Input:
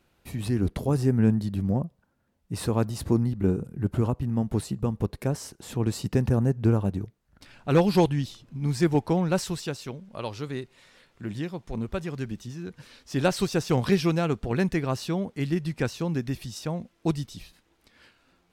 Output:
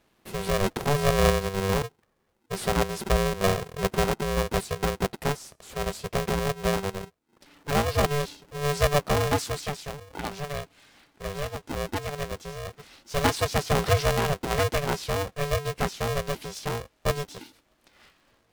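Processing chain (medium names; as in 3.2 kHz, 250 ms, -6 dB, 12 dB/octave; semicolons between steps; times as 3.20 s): 5.32–8.04 s: feedback comb 360 Hz, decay 0.29 s, mix 40%; polarity switched at an audio rate 290 Hz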